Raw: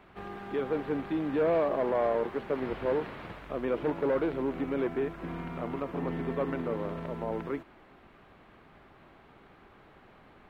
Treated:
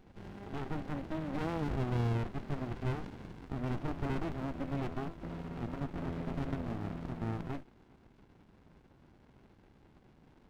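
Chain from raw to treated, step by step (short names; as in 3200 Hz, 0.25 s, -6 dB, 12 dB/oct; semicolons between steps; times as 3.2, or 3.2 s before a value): pre-echo 0.111 s -17 dB; running maximum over 65 samples; gain -2 dB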